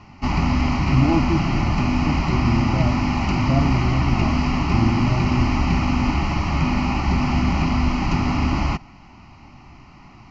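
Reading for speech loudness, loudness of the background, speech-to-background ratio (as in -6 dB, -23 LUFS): -24.5 LUFS, -21.5 LUFS, -3.0 dB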